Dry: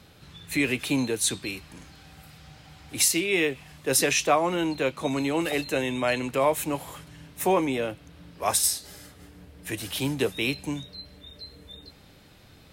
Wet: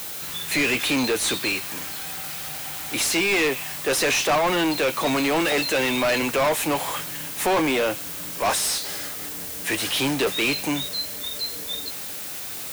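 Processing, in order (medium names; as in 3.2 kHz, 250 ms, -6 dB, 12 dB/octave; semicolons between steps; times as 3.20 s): added noise violet -43 dBFS; overdrive pedal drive 30 dB, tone 5.1 kHz, clips at -8 dBFS; trim -5.5 dB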